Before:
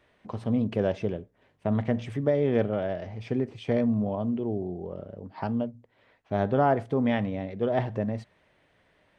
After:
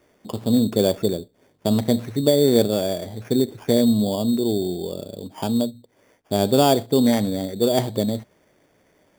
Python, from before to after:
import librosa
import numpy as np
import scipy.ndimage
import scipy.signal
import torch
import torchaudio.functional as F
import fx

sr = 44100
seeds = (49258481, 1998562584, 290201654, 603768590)

y = fx.peak_eq(x, sr, hz=330.0, db=9.5, octaves=2.2)
y = fx.sample_hold(y, sr, seeds[0], rate_hz=4000.0, jitter_pct=0)